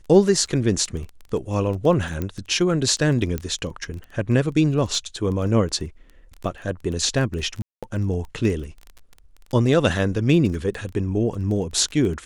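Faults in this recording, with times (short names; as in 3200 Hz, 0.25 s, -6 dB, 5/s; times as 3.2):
crackle 12/s -28 dBFS
2.22 pop -14 dBFS
3.38 pop -13 dBFS
7.62–7.83 gap 0.206 s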